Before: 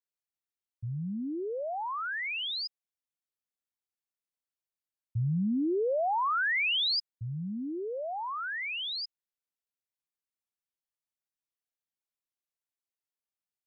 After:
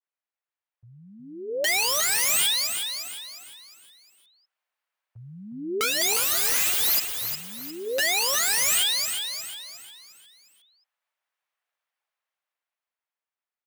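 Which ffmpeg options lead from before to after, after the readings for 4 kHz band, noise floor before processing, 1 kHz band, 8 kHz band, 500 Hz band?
+8.0 dB, below −85 dBFS, −1.5 dB, can't be measured, +1.5 dB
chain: -filter_complex "[0:a]acrossover=split=500 2800:gain=0.0891 1 0.158[link_01][link_02][link_03];[link_01][link_02][link_03]amix=inputs=3:normalize=0,bandreject=frequency=406.6:width_type=h:width=4,bandreject=frequency=813.2:width_type=h:width=4,bandreject=frequency=1219.8:width_type=h:width=4,bandreject=frequency=1626.4:width_type=h:width=4,bandreject=frequency=2033:width_type=h:width=4,bandreject=frequency=2439.6:width_type=h:width=4,bandreject=frequency=2846.2:width_type=h:width=4,acrossover=split=440[link_04][link_05];[link_05]dynaudnorm=framelen=140:gausssize=21:maxgain=10dB[link_06];[link_04][link_06]amix=inputs=2:normalize=0,aeval=exprs='(mod(25.1*val(0)+1,2)-1)/25.1':channel_layout=same,asplit=6[link_07][link_08][link_09][link_10][link_11][link_12];[link_08]adelay=357,afreqshift=31,volume=-7dB[link_13];[link_09]adelay=714,afreqshift=62,volume=-14.1dB[link_14];[link_10]adelay=1071,afreqshift=93,volume=-21.3dB[link_15];[link_11]adelay=1428,afreqshift=124,volume=-28.4dB[link_16];[link_12]adelay=1785,afreqshift=155,volume=-35.5dB[link_17];[link_07][link_13][link_14][link_15][link_16][link_17]amix=inputs=6:normalize=0,adynamicequalizer=threshold=0.00562:dfrequency=1700:dqfactor=0.7:tfrequency=1700:tqfactor=0.7:attack=5:release=100:ratio=0.375:range=1.5:mode=boostabove:tftype=highshelf,volume=6dB"

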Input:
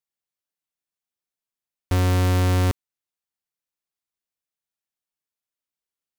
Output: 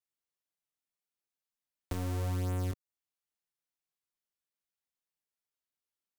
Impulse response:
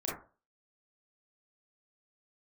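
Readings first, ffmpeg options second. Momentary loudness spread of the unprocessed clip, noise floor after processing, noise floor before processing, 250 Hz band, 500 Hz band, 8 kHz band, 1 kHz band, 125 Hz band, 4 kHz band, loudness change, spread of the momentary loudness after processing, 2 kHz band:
7 LU, below −85 dBFS, below −85 dBFS, −13.5 dB, −14.0 dB, −13.5 dB, −15.5 dB, −14.0 dB, −17.5 dB, −14.0 dB, 8 LU, −18.0 dB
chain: -filter_complex "[0:a]flanger=delay=16:depth=5.8:speed=0.59,acrossover=split=150|1000|6200[link_01][link_02][link_03][link_04];[link_01]acompressor=threshold=-34dB:ratio=4[link_05];[link_02]acompressor=threshold=-39dB:ratio=4[link_06];[link_03]acompressor=threshold=-50dB:ratio=4[link_07];[link_04]acompressor=threshold=-46dB:ratio=4[link_08];[link_05][link_06][link_07][link_08]amix=inputs=4:normalize=0,volume=-1.5dB"

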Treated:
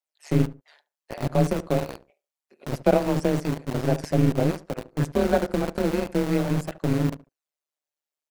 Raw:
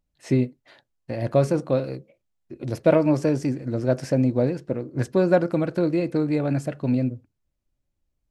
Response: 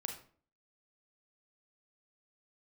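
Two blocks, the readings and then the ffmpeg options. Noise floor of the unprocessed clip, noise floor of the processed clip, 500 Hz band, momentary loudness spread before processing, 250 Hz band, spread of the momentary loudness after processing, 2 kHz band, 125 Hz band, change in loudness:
−78 dBFS, below −85 dBFS, −2.5 dB, 10 LU, −2.0 dB, 11 LU, +0.5 dB, 0.0 dB, −1.5 dB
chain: -filter_complex "[0:a]adynamicequalizer=threshold=0.0141:dfrequency=130:dqfactor=1.8:tfrequency=130:tqfactor=1.8:attack=5:release=100:ratio=0.375:range=3.5:mode=boostabove:tftype=bell,afreqshift=21,acrossover=split=530|3500[link_01][link_02][link_03];[link_01]aeval=exprs='val(0)*gte(abs(val(0)),0.0708)':channel_layout=same[link_04];[link_03]aphaser=in_gain=1:out_gain=1:delay=2.6:decay=0.66:speed=0.29:type=triangular[link_05];[link_04][link_02][link_05]amix=inputs=3:normalize=0,tremolo=f=150:d=0.824,asplit=2[link_06][link_07];[link_07]adelay=72,lowpass=frequency=1100:poles=1,volume=-15.5dB,asplit=2[link_08][link_09];[link_09]adelay=72,lowpass=frequency=1100:poles=1,volume=0.23[link_10];[link_08][link_10]amix=inputs=2:normalize=0[link_11];[link_06][link_11]amix=inputs=2:normalize=0"

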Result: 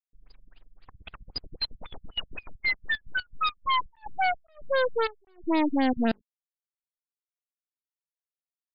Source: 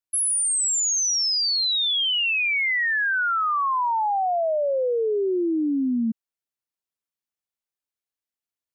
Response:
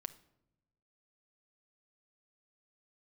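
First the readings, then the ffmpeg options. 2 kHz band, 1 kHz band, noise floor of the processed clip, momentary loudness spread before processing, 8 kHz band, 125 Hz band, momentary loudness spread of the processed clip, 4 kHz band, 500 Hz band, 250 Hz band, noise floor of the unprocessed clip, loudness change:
−7.5 dB, −5.5 dB, below −85 dBFS, 4 LU, below −40 dB, can't be measured, 13 LU, −12.0 dB, −6.5 dB, −3.0 dB, below −85 dBFS, −7.5 dB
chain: -af "highpass=frequency=140:width=0.5412,highpass=frequency=140:width=1.3066,anlmdn=1,bass=frequency=250:gain=10,treble=frequency=4000:gain=-4,bandreject=frequency=50:width_type=h:width=6,bandreject=frequency=100:width_type=h:width=6,bandreject=frequency=150:width_type=h:width=6,bandreject=frequency=200:width_type=h:width=6,bandreject=frequency=250:width_type=h:width=6,aecho=1:1:3.9:0.98,alimiter=limit=-15.5dB:level=0:latency=1:release=110,acrusher=bits=4:dc=4:mix=0:aa=0.000001,aeval=exprs='0.282*(cos(1*acos(clip(val(0)/0.282,-1,1)))-cos(1*PI/2))+0.0112*(cos(2*acos(clip(val(0)/0.282,-1,1)))-cos(2*PI/2))+0.0447*(cos(3*acos(clip(val(0)/0.282,-1,1)))-cos(3*PI/2))+0.00794*(cos(7*acos(clip(val(0)/0.282,-1,1)))-cos(7*PI/2))+0.02*(cos(8*acos(clip(val(0)/0.282,-1,1)))-cos(8*PI/2))':channel_layout=same,afftfilt=real='re*lt(b*sr/1024,210*pow(5100/210,0.5+0.5*sin(2*PI*3.8*pts/sr)))':imag='im*lt(b*sr/1024,210*pow(5100/210,0.5+0.5*sin(2*PI*3.8*pts/sr)))':win_size=1024:overlap=0.75,volume=-5.5dB"

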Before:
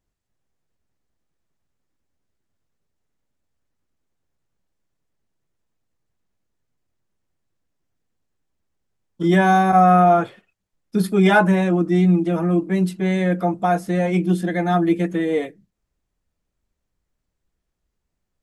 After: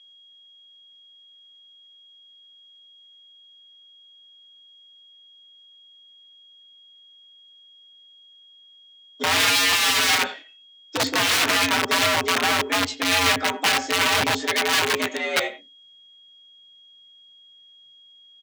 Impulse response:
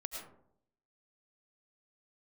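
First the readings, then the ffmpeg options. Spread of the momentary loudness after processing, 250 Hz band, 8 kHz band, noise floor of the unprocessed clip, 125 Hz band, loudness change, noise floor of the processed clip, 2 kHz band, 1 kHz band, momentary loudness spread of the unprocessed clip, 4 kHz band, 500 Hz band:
7 LU, −13.5 dB, can't be measured, −79 dBFS, −17.5 dB, −1.5 dB, −52 dBFS, +5.5 dB, −5.5 dB, 9 LU, +17.5 dB, −7.5 dB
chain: -filter_complex "[0:a]aresample=16000,asoftclip=type=tanh:threshold=-16dB,aresample=44100,flanger=delay=19.5:depth=6.7:speed=0.62,crystalizer=i=2.5:c=0,highpass=frequency=140:poles=1,asplit=2[link_01][link_02];[link_02]adelay=17,volume=-14dB[link_03];[link_01][link_03]amix=inputs=2:normalize=0,asplit=2[link_04][link_05];[link_05]adelay=90,highpass=300,lowpass=3400,asoftclip=type=hard:threshold=-20.5dB,volume=-13dB[link_06];[link_04][link_06]amix=inputs=2:normalize=0,aeval=exprs='val(0)+0.00126*sin(2*PI*3200*n/s)':channel_layout=same,aeval=exprs='(mod(11.2*val(0)+1,2)-1)/11.2':channel_layout=same,afreqshift=85,equalizer=frequency=2700:width=0.42:gain=9.5"

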